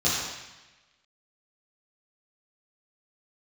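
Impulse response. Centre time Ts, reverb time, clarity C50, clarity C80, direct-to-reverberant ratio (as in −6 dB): 83 ms, 1.1 s, −1.0 dB, 1.5 dB, −10.0 dB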